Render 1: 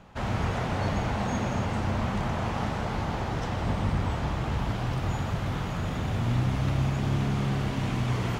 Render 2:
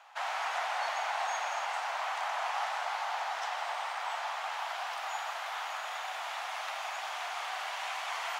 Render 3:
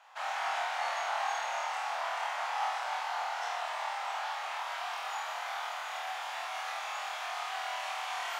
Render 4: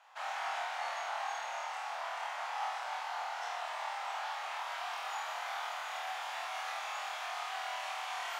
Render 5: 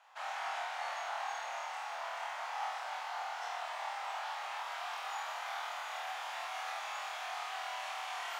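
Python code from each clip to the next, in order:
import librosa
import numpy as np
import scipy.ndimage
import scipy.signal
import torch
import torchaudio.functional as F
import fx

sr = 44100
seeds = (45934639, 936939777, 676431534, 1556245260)

y1 = scipy.signal.sosfilt(scipy.signal.ellip(4, 1.0, 80, 720.0, 'highpass', fs=sr, output='sos'), x)
y1 = F.gain(torch.from_numpy(y1), 1.5).numpy()
y2 = fx.room_flutter(y1, sr, wall_m=4.3, rt60_s=0.64)
y2 = F.gain(torch.from_numpy(y2), -4.0).numpy()
y3 = fx.rider(y2, sr, range_db=10, speed_s=2.0)
y3 = F.gain(torch.from_numpy(y3), -3.5).numpy()
y4 = fx.echo_crushed(y3, sr, ms=621, feedback_pct=55, bits=10, wet_db=-14.0)
y4 = F.gain(torch.from_numpy(y4), -1.5).numpy()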